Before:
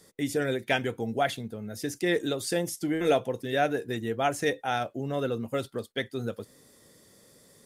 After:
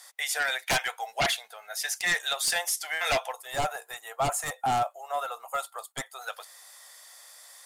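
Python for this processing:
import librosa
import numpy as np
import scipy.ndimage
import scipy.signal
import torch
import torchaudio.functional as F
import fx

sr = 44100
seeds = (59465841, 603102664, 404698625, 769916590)

y = scipy.signal.sosfilt(scipy.signal.ellip(4, 1.0, 60, 720.0, 'highpass', fs=sr, output='sos'), x)
y = fx.fold_sine(y, sr, drive_db=14, ceiling_db=-13.0)
y = fx.spec_box(y, sr, start_s=3.33, length_s=2.89, low_hz=1400.0, high_hz=6500.0, gain_db=-10)
y = F.gain(torch.from_numpy(y), -7.5).numpy()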